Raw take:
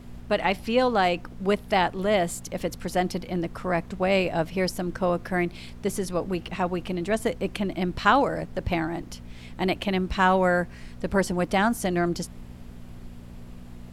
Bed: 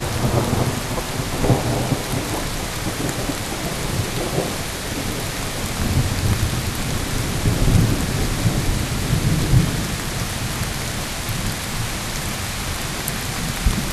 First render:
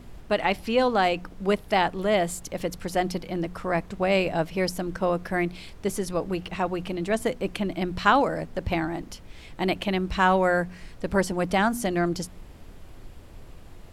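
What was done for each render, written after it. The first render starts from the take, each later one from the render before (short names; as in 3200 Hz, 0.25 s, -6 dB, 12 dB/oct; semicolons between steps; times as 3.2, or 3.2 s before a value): de-hum 60 Hz, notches 4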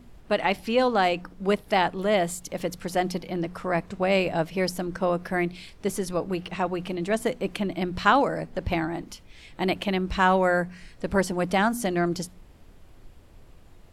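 noise print and reduce 6 dB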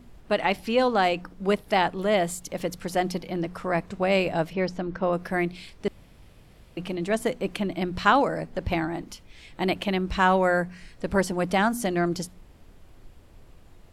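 4.53–5.13 air absorption 170 m; 5.88–6.77 room tone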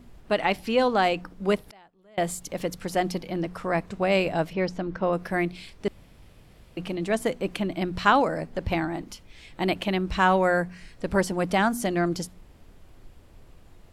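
1.68–2.18 flipped gate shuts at -28 dBFS, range -31 dB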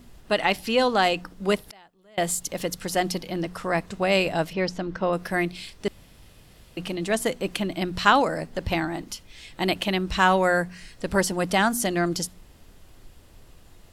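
high shelf 2400 Hz +8.5 dB; notch 2300 Hz, Q 19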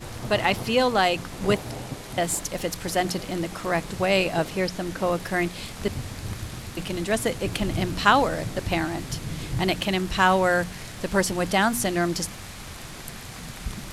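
add bed -14 dB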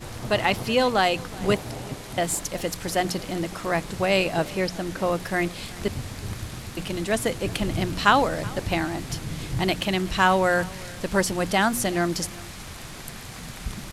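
echo 0.375 s -22 dB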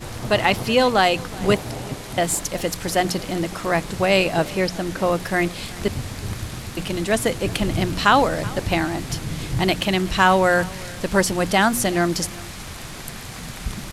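gain +4 dB; limiter -2 dBFS, peak gain reduction 3 dB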